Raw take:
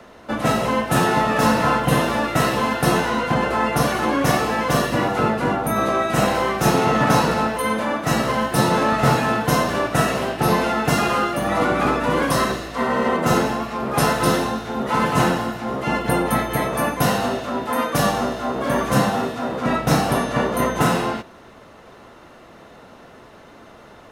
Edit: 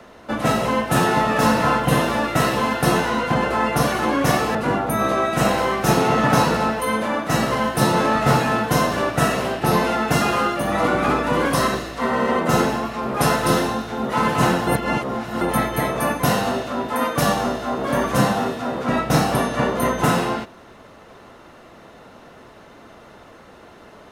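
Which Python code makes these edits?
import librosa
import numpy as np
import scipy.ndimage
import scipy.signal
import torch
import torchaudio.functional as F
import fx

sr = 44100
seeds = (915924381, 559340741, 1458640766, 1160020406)

y = fx.edit(x, sr, fx.cut(start_s=4.55, length_s=0.77),
    fx.reverse_span(start_s=15.44, length_s=0.74), tone=tone)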